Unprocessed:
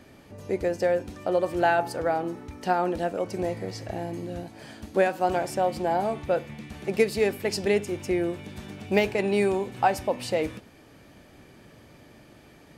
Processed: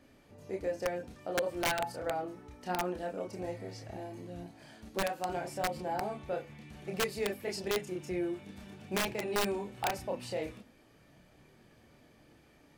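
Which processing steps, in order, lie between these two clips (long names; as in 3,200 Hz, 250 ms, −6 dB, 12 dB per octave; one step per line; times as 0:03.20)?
multi-voice chorus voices 6, 0.23 Hz, delay 30 ms, depth 4.2 ms
wrap-around overflow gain 17 dB
level −6.5 dB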